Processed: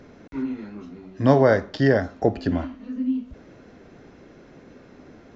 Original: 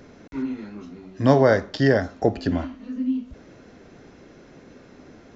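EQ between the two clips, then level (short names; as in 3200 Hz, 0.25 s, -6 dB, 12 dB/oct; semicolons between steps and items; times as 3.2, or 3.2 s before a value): high shelf 5100 Hz -8 dB; 0.0 dB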